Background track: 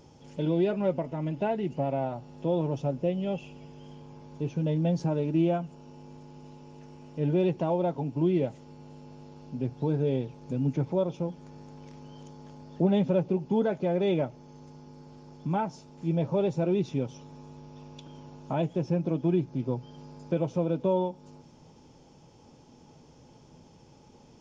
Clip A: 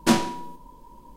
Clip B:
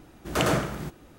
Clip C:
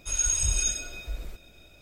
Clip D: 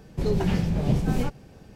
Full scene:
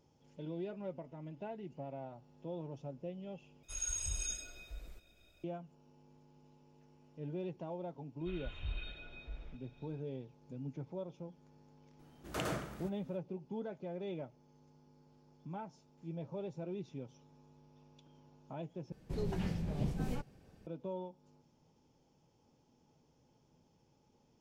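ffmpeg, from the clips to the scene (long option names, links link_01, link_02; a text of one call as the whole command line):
ffmpeg -i bed.wav -i cue0.wav -i cue1.wav -i cue2.wav -i cue3.wav -filter_complex "[3:a]asplit=2[link_01][link_02];[0:a]volume=-16dB[link_03];[link_02]aresample=8000,aresample=44100[link_04];[link_03]asplit=3[link_05][link_06][link_07];[link_05]atrim=end=3.634[link_08];[link_01]atrim=end=1.81,asetpts=PTS-STARTPTS,volume=-13dB[link_09];[link_06]atrim=start=5.436:end=18.924[link_10];[4:a]atrim=end=1.75,asetpts=PTS-STARTPTS,volume=-13dB[link_11];[link_07]atrim=start=20.666[link_12];[link_04]atrim=end=1.81,asetpts=PTS-STARTPTS,volume=-11.5dB,afade=type=in:duration=0.004:curve=hsin,afade=type=out:start_time=1.806:duration=0.004:curve=hsin,adelay=8200[link_13];[2:a]atrim=end=1.18,asetpts=PTS-STARTPTS,volume=-14dB,afade=type=in:duration=0.004:curve=hsin,afade=type=out:start_time=1.176:duration=0.004:curve=hsin,adelay=11990[link_14];[link_08][link_09]acrossfade=duration=0.004:curve1=hsin:curve2=hsin[link_15];[link_15][link_10]acrossfade=duration=0.004:curve1=hsin:curve2=hsin[link_16];[link_16][link_11]acrossfade=duration=0.004:curve1=hsin:curve2=hsin[link_17];[link_17][link_12]acrossfade=duration=0.004:curve1=hsin:curve2=hsin[link_18];[link_18][link_13][link_14]amix=inputs=3:normalize=0" out.wav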